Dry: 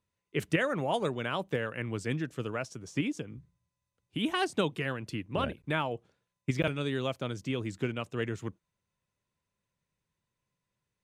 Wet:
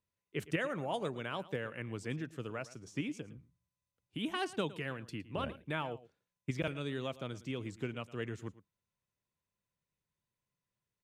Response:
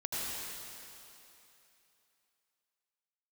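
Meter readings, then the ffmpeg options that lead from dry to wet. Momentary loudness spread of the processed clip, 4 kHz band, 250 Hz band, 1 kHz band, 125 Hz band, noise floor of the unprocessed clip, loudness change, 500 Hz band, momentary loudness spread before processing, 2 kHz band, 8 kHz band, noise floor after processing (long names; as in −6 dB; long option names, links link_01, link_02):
8 LU, −6.5 dB, −6.5 dB, −6.5 dB, −6.5 dB, below −85 dBFS, −6.5 dB, −6.5 dB, 8 LU, −6.5 dB, −6.5 dB, below −85 dBFS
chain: -af "aecho=1:1:112:0.133,volume=-6.5dB"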